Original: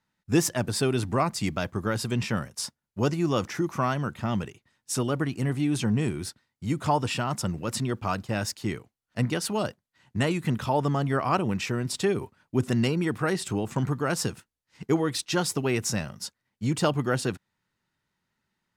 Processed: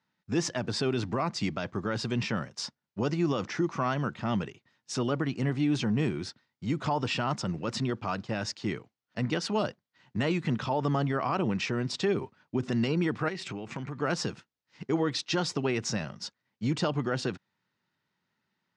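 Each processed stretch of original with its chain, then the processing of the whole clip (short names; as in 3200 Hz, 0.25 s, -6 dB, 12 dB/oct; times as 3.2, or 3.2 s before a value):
13.28–14.02 bell 2300 Hz +9 dB 0.51 oct + compressor 10:1, threshold -31 dBFS
whole clip: LPF 5900 Hz 24 dB/oct; limiter -18.5 dBFS; HPF 120 Hz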